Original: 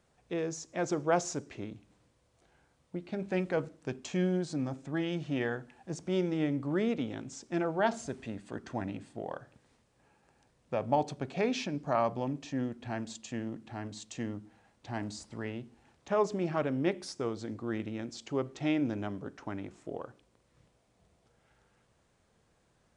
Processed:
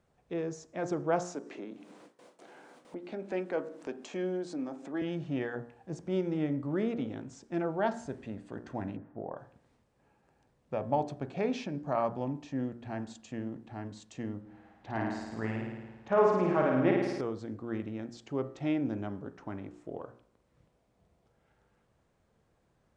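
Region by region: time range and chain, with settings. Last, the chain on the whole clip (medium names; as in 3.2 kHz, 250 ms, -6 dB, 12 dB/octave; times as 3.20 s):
1.22–5.02 s: high-pass 240 Hz 24 dB/octave + upward compressor, threshold -35 dBFS + gate with hold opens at -43 dBFS, closes at -48 dBFS
8.96–9.37 s: low-pass 1.5 kHz 24 dB/octave + tape noise reduction on one side only encoder only
14.41–17.21 s: FFT filter 140 Hz 0 dB, 1.8 kHz +6 dB, 9.5 kHz -7 dB + flutter echo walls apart 9.3 m, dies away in 1.2 s
whole clip: treble shelf 2.2 kHz -9.5 dB; de-hum 59.2 Hz, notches 33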